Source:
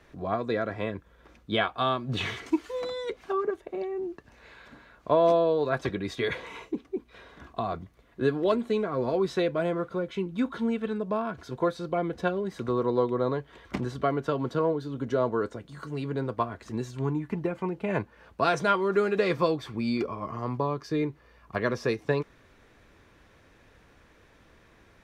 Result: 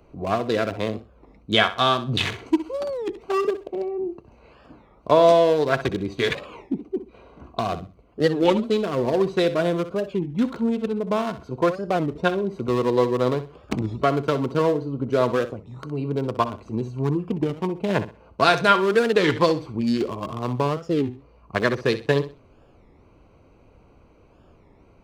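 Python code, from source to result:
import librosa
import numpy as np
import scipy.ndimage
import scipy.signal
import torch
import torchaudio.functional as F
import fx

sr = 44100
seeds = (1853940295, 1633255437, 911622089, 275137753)

p1 = fx.wiener(x, sr, points=25)
p2 = fx.high_shelf(p1, sr, hz=2500.0, db=11.0)
p3 = p2 + fx.echo_feedback(p2, sr, ms=64, feedback_pct=25, wet_db=-13, dry=0)
p4 = fx.record_warp(p3, sr, rpm=33.33, depth_cents=250.0)
y = F.gain(torch.from_numpy(p4), 5.5).numpy()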